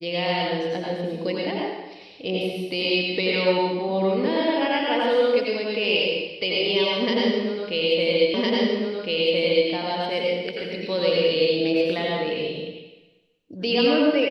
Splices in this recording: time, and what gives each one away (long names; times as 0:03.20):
0:08.34: the same again, the last 1.36 s